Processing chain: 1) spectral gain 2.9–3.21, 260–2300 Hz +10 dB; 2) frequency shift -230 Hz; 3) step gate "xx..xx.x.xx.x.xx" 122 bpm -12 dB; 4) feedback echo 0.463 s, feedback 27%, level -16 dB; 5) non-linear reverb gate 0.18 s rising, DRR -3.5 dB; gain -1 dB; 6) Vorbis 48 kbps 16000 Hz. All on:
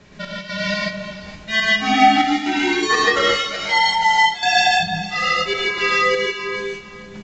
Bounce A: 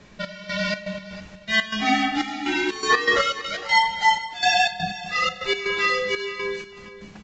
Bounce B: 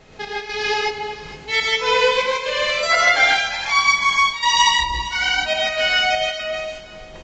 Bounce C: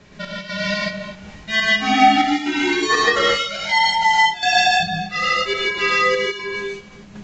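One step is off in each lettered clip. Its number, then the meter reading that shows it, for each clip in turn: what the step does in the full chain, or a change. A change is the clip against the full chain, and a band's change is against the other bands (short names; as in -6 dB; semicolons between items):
5, loudness change -5.0 LU; 2, 250 Hz band -20.0 dB; 4, momentary loudness spread change -1 LU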